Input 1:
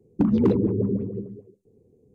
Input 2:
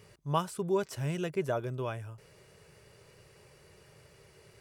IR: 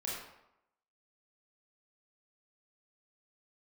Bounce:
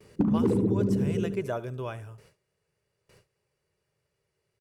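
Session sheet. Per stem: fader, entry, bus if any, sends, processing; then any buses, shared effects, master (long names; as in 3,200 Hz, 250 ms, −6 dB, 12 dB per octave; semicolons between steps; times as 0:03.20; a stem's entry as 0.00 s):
+1.5 dB, 0.00 s, no send, echo send −12 dB, automatic gain control gain up to 9 dB; automatic ducking −9 dB, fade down 1.05 s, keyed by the second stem
0.0 dB, 0.00 s, no send, echo send −18.5 dB, no processing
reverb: not used
echo: repeating echo 72 ms, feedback 32%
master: noise gate with hold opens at −45 dBFS; downward compressor 6 to 1, threshold −21 dBFS, peak gain reduction 8.5 dB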